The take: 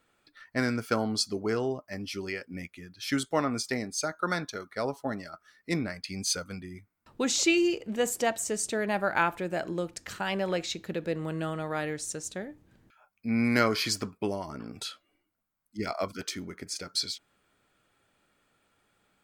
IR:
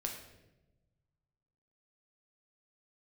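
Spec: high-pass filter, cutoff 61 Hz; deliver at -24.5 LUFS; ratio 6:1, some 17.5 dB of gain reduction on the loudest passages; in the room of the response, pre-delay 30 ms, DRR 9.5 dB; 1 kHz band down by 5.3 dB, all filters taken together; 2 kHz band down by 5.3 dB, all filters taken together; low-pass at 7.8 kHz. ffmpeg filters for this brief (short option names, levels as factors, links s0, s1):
-filter_complex "[0:a]highpass=61,lowpass=7800,equalizer=f=1000:t=o:g=-6,equalizer=f=2000:t=o:g=-5,acompressor=threshold=0.00794:ratio=6,asplit=2[s0][s1];[1:a]atrim=start_sample=2205,adelay=30[s2];[s1][s2]afir=irnorm=-1:irlink=0,volume=0.316[s3];[s0][s3]amix=inputs=2:normalize=0,volume=10.6"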